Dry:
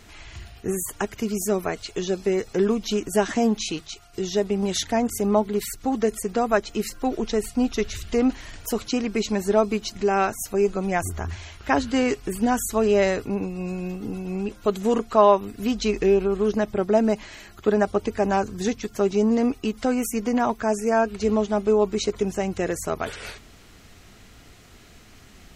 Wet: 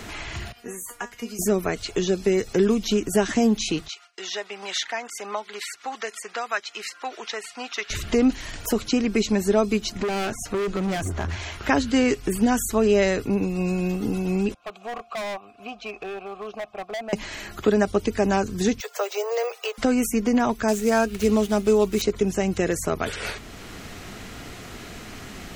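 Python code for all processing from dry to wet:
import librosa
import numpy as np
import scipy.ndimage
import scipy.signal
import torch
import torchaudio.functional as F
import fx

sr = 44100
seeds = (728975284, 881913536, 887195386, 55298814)

y = fx.chain(x, sr, fx.low_shelf(hz=470.0, db=-10.5),
    fx.comb_fb(f0_hz=240.0, decay_s=0.19, harmonics='all', damping=0.0, mix_pct=90), at=(0.52, 1.39))
y = fx.chain(y, sr, fx.gate_hold(open_db=-38.0, close_db=-43.0, hold_ms=71.0, range_db=-21, attack_ms=1.4, release_ms=100.0),
    fx.highpass(hz=1400.0, slope=12),
    fx.air_absorb(metres=76.0), at=(3.88, 7.9))
y = fx.chain(y, sr, fx.bessel_lowpass(hz=5800.0, order=2),
    fx.clip_hard(threshold_db=-27.0), at=(10.02, 11.4))
y = fx.chain(y, sr, fx.vowel_filter(vowel='a'),
    fx.overload_stage(gain_db=33.0),
    fx.peak_eq(hz=370.0, db=-6.5, octaves=2.1), at=(14.54, 17.13))
y = fx.chain(y, sr, fx.resample_bad(factor=2, down='filtered', up='hold'),
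    fx.steep_highpass(hz=460.0, slope=72), at=(18.8, 19.78))
y = fx.chain(y, sr, fx.median_filter(points=9),
    fx.high_shelf(hz=3300.0, db=10.0), at=(20.68, 22.02))
y = fx.dynamic_eq(y, sr, hz=840.0, q=0.92, threshold_db=-35.0, ratio=4.0, max_db=-5)
y = fx.band_squash(y, sr, depth_pct=40)
y = y * librosa.db_to_amplitude(3.5)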